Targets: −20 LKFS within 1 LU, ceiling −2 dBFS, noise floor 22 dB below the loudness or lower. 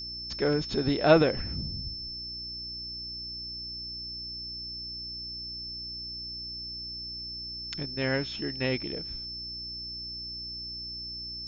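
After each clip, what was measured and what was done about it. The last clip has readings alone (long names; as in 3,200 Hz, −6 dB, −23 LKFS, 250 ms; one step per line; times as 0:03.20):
mains hum 60 Hz; hum harmonics up to 360 Hz; level of the hum −47 dBFS; interfering tone 5,300 Hz; level of the tone −36 dBFS; integrated loudness −31.5 LKFS; sample peak −7.5 dBFS; target loudness −20.0 LKFS
→ hum removal 60 Hz, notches 6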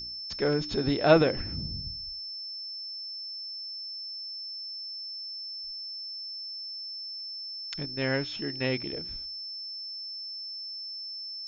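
mains hum none found; interfering tone 5,300 Hz; level of the tone −36 dBFS
→ notch filter 5,300 Hz, Q 30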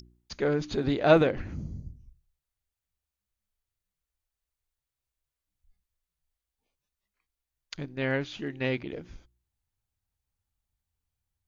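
interfering tone none found; integrated loudness −28.0 LKFS; sample peak −7.5 dBFS; target loudness −20.0 LKFS
→ level +8 dB
brickwall limiter −2 dBFS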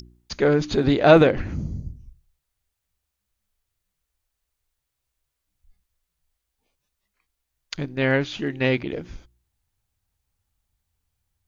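integrated loudness −20.5 LKFS; sample peak −2.0 dBFS; background noise floor −81 dBFS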